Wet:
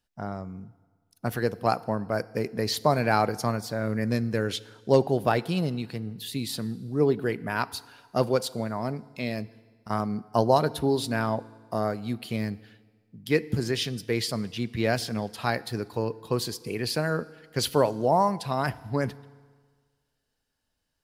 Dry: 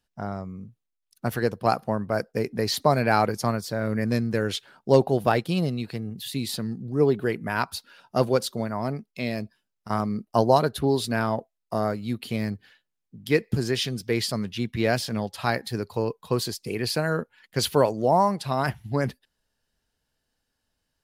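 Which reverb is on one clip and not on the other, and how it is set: FDN reverb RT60 1.6 s, low-frequency decay 0.95×, high-frequency decay 0.85×, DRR 18 dB; gain -2 dB

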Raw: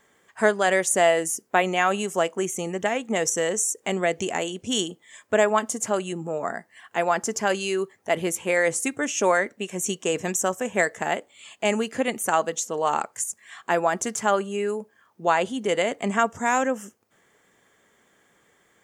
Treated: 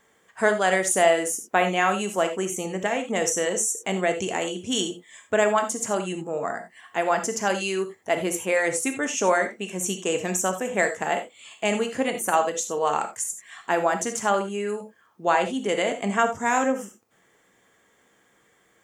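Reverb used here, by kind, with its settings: non-linear reverb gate 0.11 s flat, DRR 6 dB; gain -1 dB

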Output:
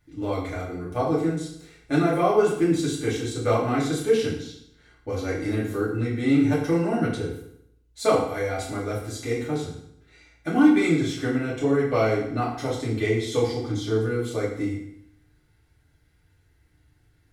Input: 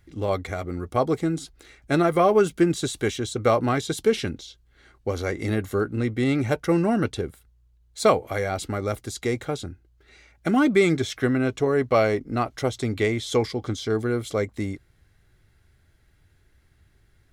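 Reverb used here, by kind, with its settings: FDN reverb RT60 0.72 s, low-frequency decay 1.1×, high-frequency decay 0.9×, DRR -7 dB; gain -9.5 dB

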